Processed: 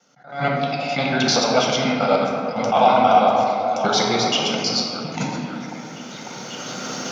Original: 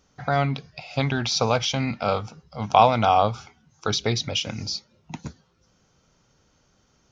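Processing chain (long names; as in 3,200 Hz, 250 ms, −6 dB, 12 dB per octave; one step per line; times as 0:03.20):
reversed piece by piece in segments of 80 ms
camcorder AGC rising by 11 dB per second
high-pass filter 180 Hz 24 dB per octave
in parallel at −2 dB: downward compressor, threshold −29 dBFS, peak gain reduction 17 dB
on the sum: echo through a band-pass that steps 546 ms, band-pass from 610 Hz, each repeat 0.7 octaves, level −7 dB
convolution reverb RT60 2.2 s, pre-delay 6 ms, DRR −1.5 dB
level that may rise only so fast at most 130 dB per second
level −2.5 dB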